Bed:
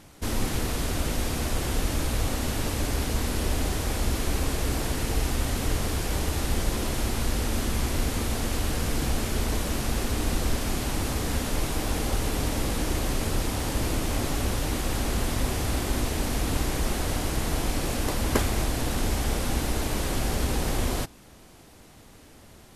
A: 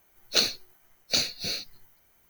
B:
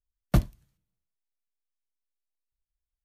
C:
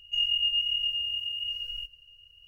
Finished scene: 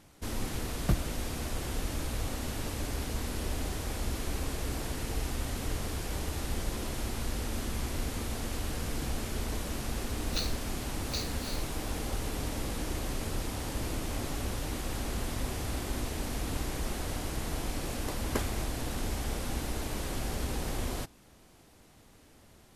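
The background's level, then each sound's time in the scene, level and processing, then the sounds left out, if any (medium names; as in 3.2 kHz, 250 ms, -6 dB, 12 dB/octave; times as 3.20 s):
bed -7.5 dB
0.55 s: add B -6 dB
10.00 s: add A -12.5 dB
not used: C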